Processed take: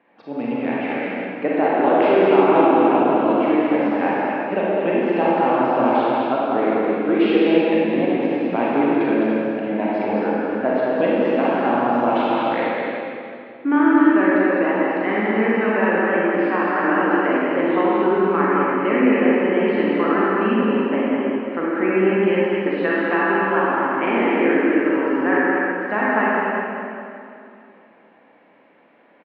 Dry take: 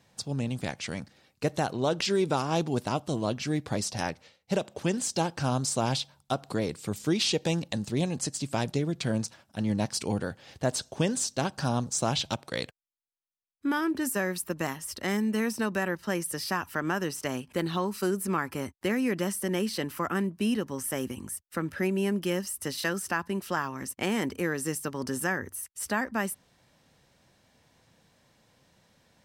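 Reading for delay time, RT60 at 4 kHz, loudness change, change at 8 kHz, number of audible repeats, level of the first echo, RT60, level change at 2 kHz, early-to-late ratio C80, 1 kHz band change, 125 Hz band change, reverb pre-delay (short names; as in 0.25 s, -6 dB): 0.209 s, 2.2 s, +11.5 dB, under -35 dB, 1, -4.0 dB, 2.5 s, +12.0 dB, -3.5 dB, +14.5 dB, -1.0 dB, 34 ms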